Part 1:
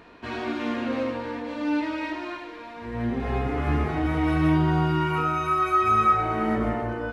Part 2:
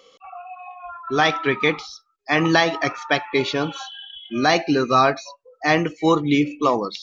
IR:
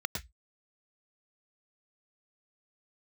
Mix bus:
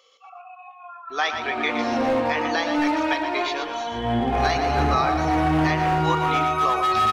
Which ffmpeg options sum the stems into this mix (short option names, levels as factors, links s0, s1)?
-filter_complex "[0:a]equalizer=f=760:t=o:w=0.53:g=14,dynaudnorm=f=220:g=7:m=5.96,asoftclip=type=hard:threshold=0.316,adelay=1100,volume=0.473[s0];[1:a]highpass=660,volume=0.631,asplit=2[s1][s2];[s2]volume=0.398,aecho=0:1:118|236|354|472:1|0.26|0.0676|0.0176[s3];[s0][s1][s3]amix=inputs=3:normalize=0,alimiter=limit=0.282:level=0:latency=1:release=301"